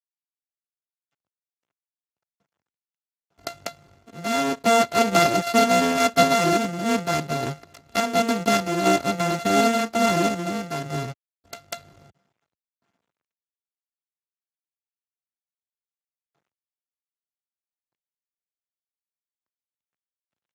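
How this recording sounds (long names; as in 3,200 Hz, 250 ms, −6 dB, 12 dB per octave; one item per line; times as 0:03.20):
a buzz of ramps at a fixed pitch in blocks of 64 samples
sample-and-hold tremolo
a quantiser's noise floor 12 bits, dither none
Speex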